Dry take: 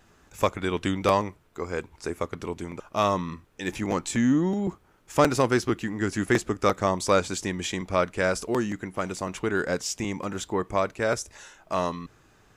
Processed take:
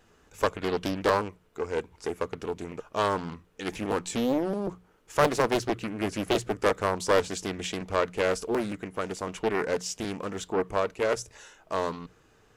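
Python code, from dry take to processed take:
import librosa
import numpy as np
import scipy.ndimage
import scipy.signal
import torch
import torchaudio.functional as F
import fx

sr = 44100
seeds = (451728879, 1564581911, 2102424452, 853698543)

y = fx.hum_notches(x, sr, base_hz=60, count=3)
y = fx.small_body(y, sr, hz=(460.0, 2900.0), ring_ms=45, db=8)
y = fx.doppler_dist(y, sr, depth_ms=0.95)
y = y * 10.0 ** (-3.0 / 20.0)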